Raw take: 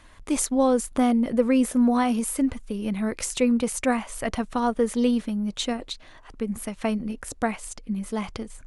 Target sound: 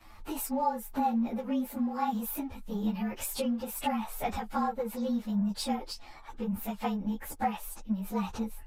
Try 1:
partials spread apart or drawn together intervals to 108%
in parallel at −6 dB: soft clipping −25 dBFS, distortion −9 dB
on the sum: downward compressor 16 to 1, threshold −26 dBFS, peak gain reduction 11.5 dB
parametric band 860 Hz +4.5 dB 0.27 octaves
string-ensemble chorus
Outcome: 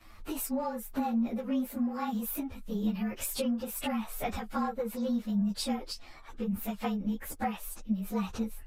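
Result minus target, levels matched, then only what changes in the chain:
1,000 Hz band −4.5 dB; soft clipping: distortion −6 dB
change: soft clipping −37 dBFS, distortion −2 dB
change: parametric band 860 Hz +14 dB 0.27 octaves

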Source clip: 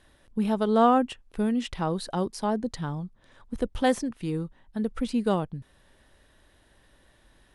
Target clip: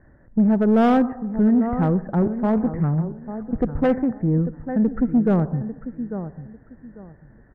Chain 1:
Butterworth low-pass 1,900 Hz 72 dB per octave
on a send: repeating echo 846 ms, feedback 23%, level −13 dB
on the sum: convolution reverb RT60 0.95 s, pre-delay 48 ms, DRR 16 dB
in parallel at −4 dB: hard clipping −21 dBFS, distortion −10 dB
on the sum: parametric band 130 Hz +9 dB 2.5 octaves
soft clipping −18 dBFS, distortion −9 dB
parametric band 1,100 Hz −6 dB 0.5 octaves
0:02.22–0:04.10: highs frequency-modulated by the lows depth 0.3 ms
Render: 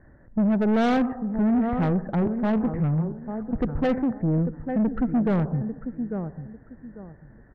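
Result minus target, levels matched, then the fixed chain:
soft clipping: distortion +9 dB
Butterworth low-pass 1,900 Hz 72 dB per octave
on a send: repeating echo 846 ms, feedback 23%, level −13 dB
on the sum: convolution reverb RT60 0.95 s, pre-delay 48 ms, DRR 16 dB
in parallel at −4 dB: hard clipping −21 dBFS, distortion −10 dB
on the sum: parametric band 130 Hz +9 dB 2.5 octaves
soft clipping −9.5 dBFS, distortion −19 dB
parametric band 1,100 Hz −6 dB 0.5 octaves
0:02.22–0:04.10: highs frequency-modulated by the lows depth 0.3 ms

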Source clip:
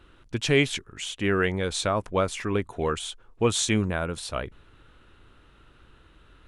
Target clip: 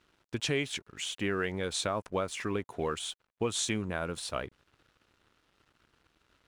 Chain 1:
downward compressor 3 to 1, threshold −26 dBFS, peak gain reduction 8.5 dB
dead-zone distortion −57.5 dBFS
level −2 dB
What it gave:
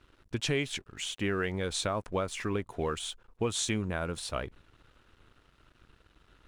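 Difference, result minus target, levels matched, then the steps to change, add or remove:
125 Hz band +2.5 dB
add after downward compressor: high-pass filter 120 Hz 6 dB per octave

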